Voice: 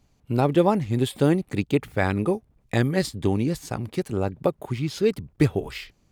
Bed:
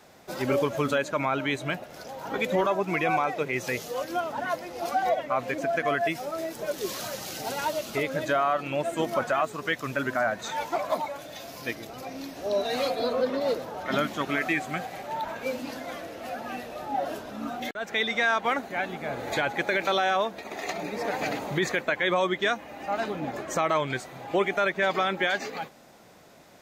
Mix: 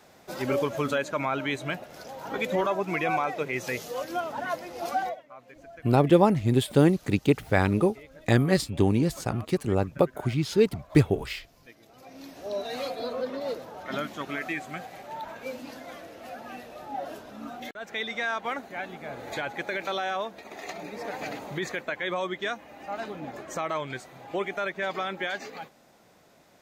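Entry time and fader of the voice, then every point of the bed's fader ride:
5.55 s, +0.5 dB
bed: 5.02 s -1.5 dB
5.23 s -20.5 dB
11.65 s -20.5 dB
12.28 s -5.5 dB

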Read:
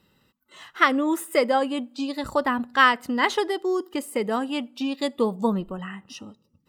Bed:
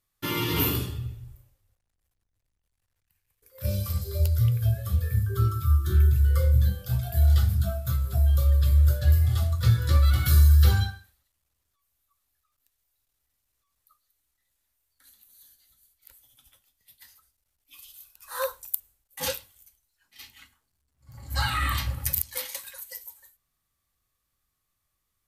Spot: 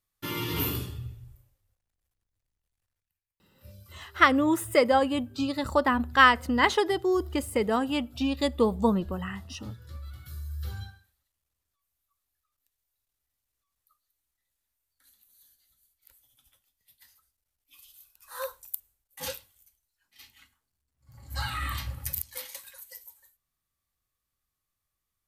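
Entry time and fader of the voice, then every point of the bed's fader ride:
3.40 s, -0.5 dB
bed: 2.87 s -4.5 dB
3.36 s -22 dB
10.43 s -22 dB
11.23 s -6 dB

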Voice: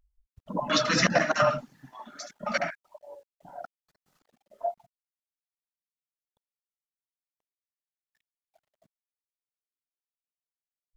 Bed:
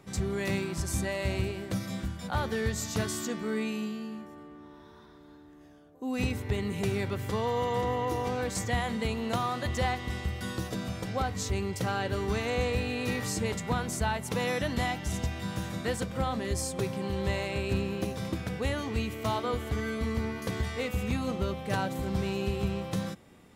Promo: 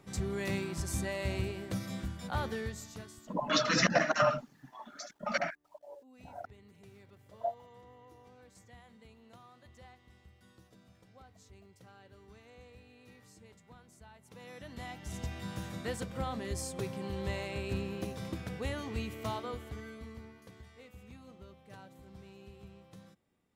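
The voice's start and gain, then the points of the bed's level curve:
2.80 s, -4.0 dB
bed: 2.46 s -4 dB
3.44 s -26.5 dB
14.09 s -26.5 dB
15.31 s -6 dB
19.25 s -6 dB
20.56 s -22 dB

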